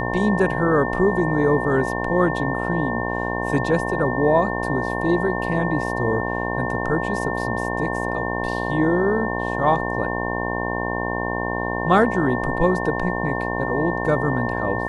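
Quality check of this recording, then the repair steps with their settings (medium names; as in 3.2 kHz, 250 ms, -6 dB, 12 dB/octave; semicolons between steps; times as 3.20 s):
buzz 60 Hz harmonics 18 -26 dBFS
whine 1.8 kHz -28 dBFS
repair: band-stop 1.8 kHz, Q 30; de-hum 60 Hz, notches 18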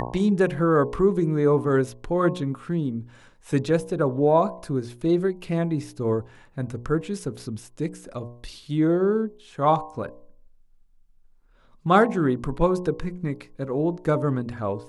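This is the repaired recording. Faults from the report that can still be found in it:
nothing left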